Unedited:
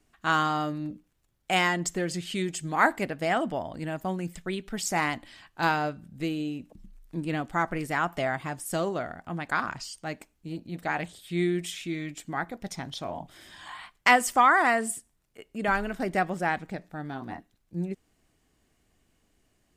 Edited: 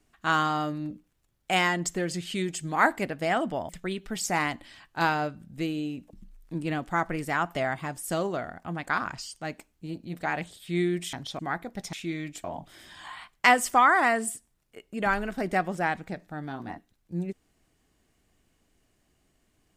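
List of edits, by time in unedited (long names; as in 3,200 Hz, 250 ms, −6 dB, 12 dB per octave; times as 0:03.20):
0:03.69–0:04.31: remove
0:11.75–0:12.26: swap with 0:12.80–0:13.06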